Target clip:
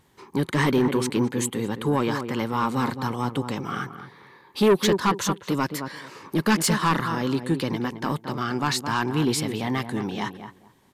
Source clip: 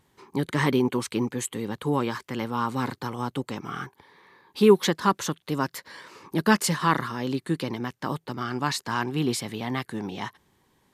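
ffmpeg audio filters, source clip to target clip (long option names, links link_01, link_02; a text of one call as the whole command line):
ffmpeg -i in.wav -filter_complex "[0:a]asplit=2[link_01][link_02];[link_02]adelay=217,lowpass=frequency=1300:poles=1,volume=-9dB,asplit=2[link_03][link_04];[link_04]adelay=217,lowpass=frequency=1300:poles=1,volume=0.2,asplit=2[link_05][link_06];[link_06]adelay=217,lowpass=frequency=1300:poles=1,volume=0.2[link_07];[link_01][link_03][link_05][link_07]amix=inputs=4:normalize=0,asoftclip=type=tanh:threshold=-17dB,volume=4dB" out.wav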